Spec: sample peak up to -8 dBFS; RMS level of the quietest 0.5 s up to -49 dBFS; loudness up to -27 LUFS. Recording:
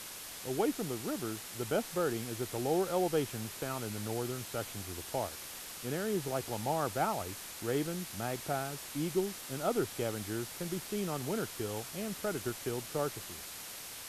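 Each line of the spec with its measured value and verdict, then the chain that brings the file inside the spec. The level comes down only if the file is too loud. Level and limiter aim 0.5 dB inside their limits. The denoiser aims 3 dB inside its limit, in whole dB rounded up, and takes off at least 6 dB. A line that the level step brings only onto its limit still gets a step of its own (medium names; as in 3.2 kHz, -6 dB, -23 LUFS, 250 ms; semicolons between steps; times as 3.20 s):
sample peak -18.0 dBFS: pass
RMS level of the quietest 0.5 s -46 dBFS: fail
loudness -36.0 LUFS: pass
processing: noise reduction 6 dB, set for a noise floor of -46 dBFS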